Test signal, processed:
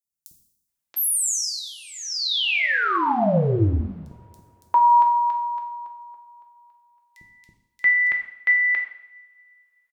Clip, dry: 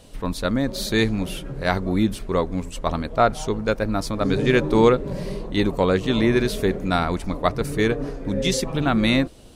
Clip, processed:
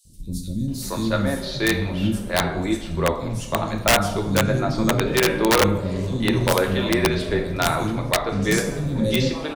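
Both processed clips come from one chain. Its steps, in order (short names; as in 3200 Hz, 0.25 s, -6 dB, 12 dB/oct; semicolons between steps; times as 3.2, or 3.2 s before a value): three bands offset in time highs, lows, mids 50/680 ms, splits 280/5100 Hz; two-slope reverb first 0.72 s, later 2.9 s, from -25 dB, DRR 2.5 dB; wrapped overs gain 9 dB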